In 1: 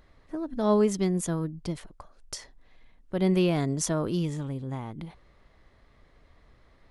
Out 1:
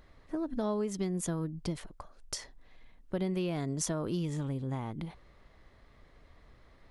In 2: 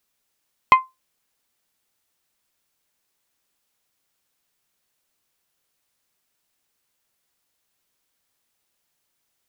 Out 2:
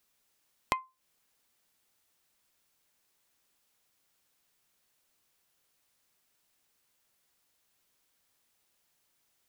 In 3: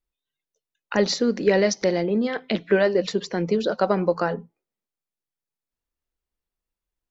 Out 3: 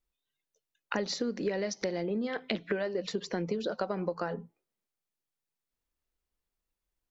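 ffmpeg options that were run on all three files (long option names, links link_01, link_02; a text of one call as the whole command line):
ffmpeg -i in.wav -af "acompressor=threshold=-29dB:ratio=8" out.wav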